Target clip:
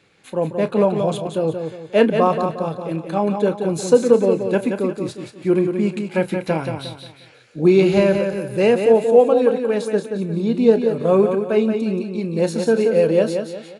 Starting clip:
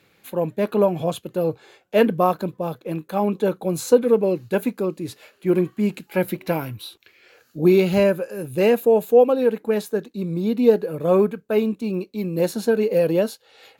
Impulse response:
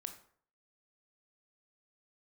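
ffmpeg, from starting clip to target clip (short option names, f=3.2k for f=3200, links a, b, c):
-filter_complex "[0:a]asplit=2[a][b];[b]adelay=31,volume=-14dB[c];[a][c]amix=inputs=2:normalize=0,asplit=2[d][e];[e]aecho=0:1:178|356|534|712:0.473|0.175|0.0648|0.024[f];[d][f]amix=inputs=2:normalize=0,aresample=22050,aresample=44100,volume=1.5dB"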